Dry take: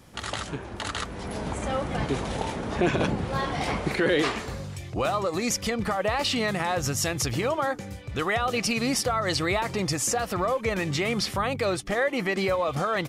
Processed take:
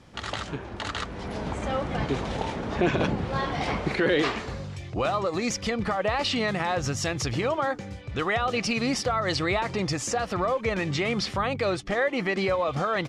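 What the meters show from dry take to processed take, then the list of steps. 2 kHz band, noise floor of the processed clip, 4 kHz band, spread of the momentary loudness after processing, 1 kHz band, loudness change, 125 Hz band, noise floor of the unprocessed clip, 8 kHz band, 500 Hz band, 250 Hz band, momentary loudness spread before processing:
0.0 dB, -40 dBFS, -1.0 dB, 8 LU, 0.0 dB, -0.5 dB, 0.0 dB, -39 dBFS, -5.0 dB, 0.0 dB, 0.0 dB, 8 LU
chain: LPF 5700 Hz 12 dB/oct

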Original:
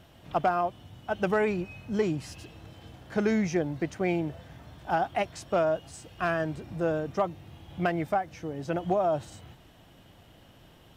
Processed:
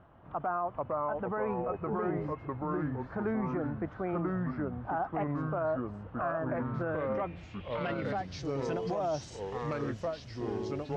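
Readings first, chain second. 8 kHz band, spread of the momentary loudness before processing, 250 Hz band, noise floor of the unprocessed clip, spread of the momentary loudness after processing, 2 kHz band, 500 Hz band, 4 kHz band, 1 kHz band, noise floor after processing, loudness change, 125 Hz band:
n/a, 20 LU, -3.0 dB, -56 dBFS, 5 LU, -6.5 dB, -4.0 dB, -5.5 dB, -4.0 dB, -49 dBFS, -5.0 dB, -0.5 dB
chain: echoes that change speed 0.373 s, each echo -3 st, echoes 3; low-pass sweep 1200 Hz -> 5900 Hz, 6.55–8.49; limiter -19.5 dBFS, peak gain reduction 9.5 dB; gain -4.5 dB

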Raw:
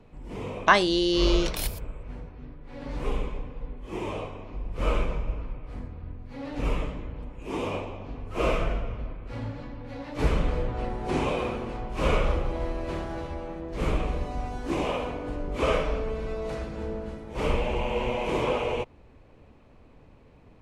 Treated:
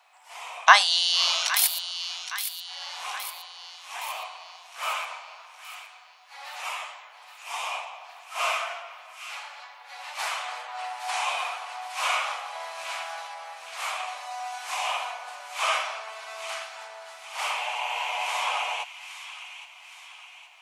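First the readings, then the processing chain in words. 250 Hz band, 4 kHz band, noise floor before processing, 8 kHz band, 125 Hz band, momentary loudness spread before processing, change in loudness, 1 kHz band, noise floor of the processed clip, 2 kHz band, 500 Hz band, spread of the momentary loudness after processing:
under -40 dB, +8.5 dB, -53 dBFS, +12.5 dB, under -40 dB, 14 LU, +2.0 dB, +4.0 dB, -50 dBFS, +5.5 dB, -11.5 dB, 21 LU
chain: Chebyshev high-pass 710 Hz, order 5; high shelf 3300 Hz +10 dB; thin delay 0.816 s, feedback 52%, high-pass 1700 Hz, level -10 dB; gain +3.5 dB

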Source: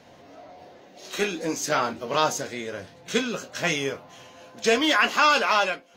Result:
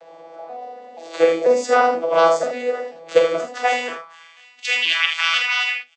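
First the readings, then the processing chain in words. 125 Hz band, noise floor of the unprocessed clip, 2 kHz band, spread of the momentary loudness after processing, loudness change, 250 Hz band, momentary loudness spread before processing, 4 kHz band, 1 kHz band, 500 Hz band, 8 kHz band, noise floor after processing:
n/a, -51 dBFS, +4.0 dB, 19 LU, +5.0 dB, -2.5 dB, 15 LU, +5.0 dB, +3.5 dB, +9.0 dB, -3.5 dB, -48 dBFS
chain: arpeggiated vocoder bare fifth, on E3, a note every 0.485 s; high-pass sweep 550 Hz -> 2500 Hz, 3.5–4.47; early reflections 46 ms -6.5 dB, 78 ms -7.5 dB; gain +7 dB

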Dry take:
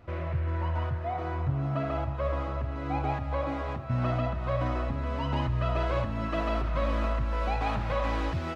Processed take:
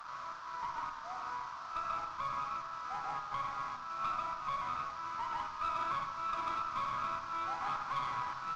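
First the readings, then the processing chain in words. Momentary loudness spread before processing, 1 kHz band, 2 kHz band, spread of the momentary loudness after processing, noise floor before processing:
3 LU, -1.0 dB, -5.5 dB, 5 LU, -34 dBFS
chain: delta modulation 32 kbps, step -34.5 dBFS; inverse Chebyshev high-pass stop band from 190 Hz, stop band 80 dB; resonant high shelf 1600 Hz -10.5 dB, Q 3; tube stage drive 31 dB, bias 0.4; shoebox room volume 260 m³, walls mixed, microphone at 0.46 m; gain +1 dB

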